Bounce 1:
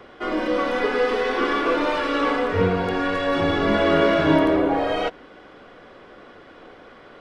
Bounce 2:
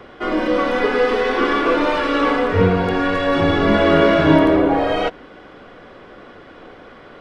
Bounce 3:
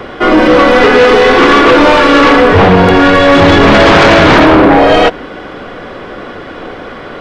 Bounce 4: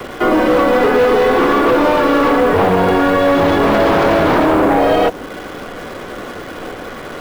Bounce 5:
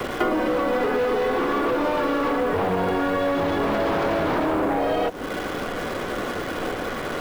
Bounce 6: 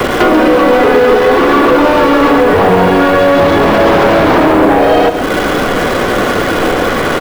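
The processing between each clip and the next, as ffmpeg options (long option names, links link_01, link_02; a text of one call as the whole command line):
ffmpeg -i in.wav -af "bass=frequency=250:gain=3,treble=frequency=4000:gain=-2,volume=4dB" out.wav
ffmpeg -i in.wav -af "aeval=exprs='0.891*sin(PI/2*3.98*val(0)/0.891)':channel_layout=same" out.wav
ffmpeg -i in.wav -filter_complex "[0:a]acrossover=split=81|180|520|1200[link_01][link_02][link_03][link_04][link_05];[link_01]acompressor=threshold=-27dB:ratio=4[link_06];[link_02]acompressor=threshold=-27dB:ratio=4[link_07];[link_03]acompressor=threshold=-12dB:ratio=4[link_08];[link_04]acompressor=threshold=-11dB:ratio=4[link_09];[link_05]acompressor=threshold=-23dB:ratio=4[link_10];[link_06][link_07][link_08][link_09][link_10]amix=inputs=5:normalize=0,asplit=2[link_11][link_12];[link_12]acrusher=bits=5:dc=4:mix=0:aa=0.000001,volume=-3.5dB[link_13];[link_11][link_13]amix=inputs=2:normalize=0,volume=-7.5dB" out.wav
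ffmpeg -i in.wav -af "acompressor=threshold=-19dB:ratio=12" out.wav
ffmpeg -i in.wav -filter_complex "[0:a]asplit=2[link_01][link_02];[link_02]aeval=exprs='0.398*sin(PI/2*3.16*val(0)/0.398)':channel_layout=same,volume=-7.5dB[link_03];[link_01][link_03]amix=inputs=2:normalize=0,aecho=1:1:137:0.335,volume=6.5dB" out.wav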